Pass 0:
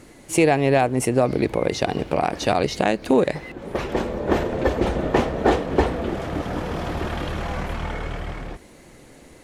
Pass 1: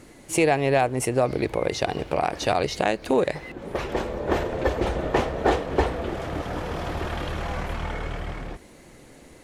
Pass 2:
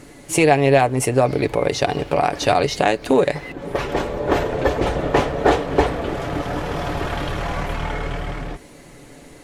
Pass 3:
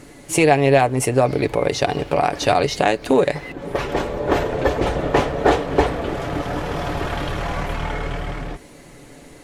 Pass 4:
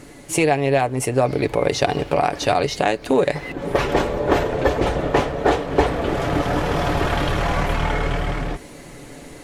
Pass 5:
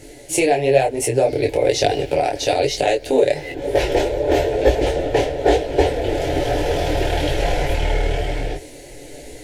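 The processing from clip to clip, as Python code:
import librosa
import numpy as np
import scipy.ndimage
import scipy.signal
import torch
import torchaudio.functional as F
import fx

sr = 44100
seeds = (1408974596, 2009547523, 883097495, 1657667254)

y1 = fx.dynamic_eq(x, sr, hz=220.0, q=1.2, threshold_db=-34.0, ratio=4.0, max_db=-6)
y1 = y1 * 10.0 ** (-1.5 / 20.0)
y2 = y1 + 0.36 * np.pad(y1, (int(7.0 * sr / 1000.0), 0))[:len(y1)]
y2 = y2 * 10.0 ** (5.0 / 20.0)
y3 = y2
y4 = fx.rider(y3, sr, range_db=4, speed_s=0.5)
y5 = fx.fixed_phaser(y4, sr, hz=480.0, stages=4)
y5 = fx.detune_double(y5, sr, cents=37)
y5 = y5 * 10.0 ** (7.5 / 20.0)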